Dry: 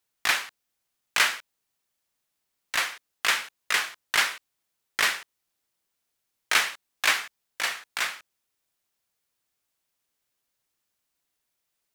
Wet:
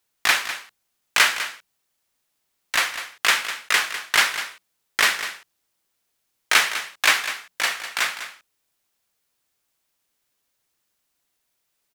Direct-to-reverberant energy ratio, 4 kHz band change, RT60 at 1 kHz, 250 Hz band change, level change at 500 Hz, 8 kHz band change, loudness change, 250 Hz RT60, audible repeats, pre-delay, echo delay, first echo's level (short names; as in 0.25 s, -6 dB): none, +5.5 dB, none, +5.0 dB, +5.5 dB, +5.5 dB, +5.0 dB, none, 1, none, 0.201 s, -11.5 dB